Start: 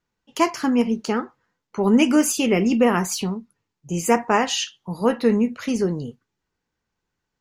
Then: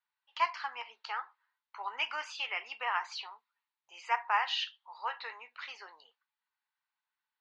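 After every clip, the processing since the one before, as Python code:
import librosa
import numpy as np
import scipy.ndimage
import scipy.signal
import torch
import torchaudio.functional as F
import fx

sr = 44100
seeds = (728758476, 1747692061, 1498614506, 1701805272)

y = scipy.signal.sosfilt(scipy.signal.ellip(3, 1.0, 60, [880.0, 4200.0], 'bandpass', fs=sr, output='sos'), x)
y = y * 10.0 ** (-6.5 / 20.0)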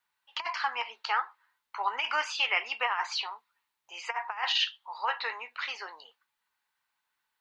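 y = fx.over_compress(x, sr, threshold_db=-34.0, ratio=-0.5)
y = y * 10.0 ** (6.5 / 20.0)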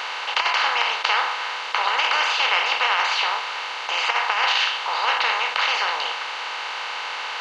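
y = fx.bin_compress(x, sr, power=0.2)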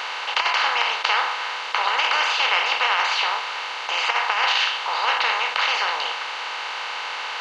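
y = x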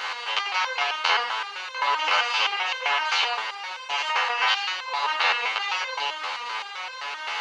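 y = fx.resonator_held(x, sr, hz=7.7, low_hz=85.0, high_hz=520.0)
y = y * 10.0 ** (8.5 / 20.0)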